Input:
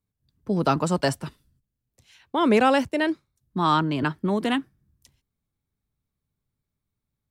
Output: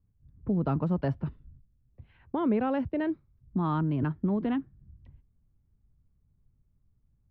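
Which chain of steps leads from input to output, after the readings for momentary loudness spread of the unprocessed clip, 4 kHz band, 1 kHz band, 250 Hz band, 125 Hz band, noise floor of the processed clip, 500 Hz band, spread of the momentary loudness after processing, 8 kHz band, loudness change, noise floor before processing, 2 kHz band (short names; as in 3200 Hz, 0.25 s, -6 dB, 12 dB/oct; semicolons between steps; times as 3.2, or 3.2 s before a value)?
16 LU, under -20 dB, -11.5 dB, -3.5 dB, -0.5 dB, -70 dBFS, -8.5 dB, 9 LU, under -35 dB, -6.5 dB, -84 dBFS, -15.0 dB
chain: RIAA curve playback; low-pass opened by the level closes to 2300 Hz; compressor 2:1, threshold -33 dBFS, peak gain reduction 13 dB; air absorption 300 m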